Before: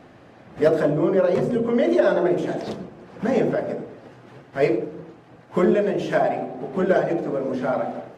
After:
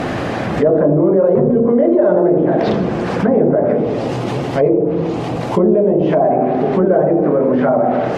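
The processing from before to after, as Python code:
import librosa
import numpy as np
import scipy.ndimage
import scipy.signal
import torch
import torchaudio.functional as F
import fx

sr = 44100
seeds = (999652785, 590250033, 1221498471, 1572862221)

y = fx.env_lowpass_down(x, sr, base_hz=810.0, full_db=-19.0)
y = fx.peak_eq(y, sr, hz=1600.0, db=-9.5, octaves=0.74, at=(3.77, 6.22))
y = fx.env_flatten(y, sr, amount_pct=70)
y = y * librosa.db_to_amplitude(4.0)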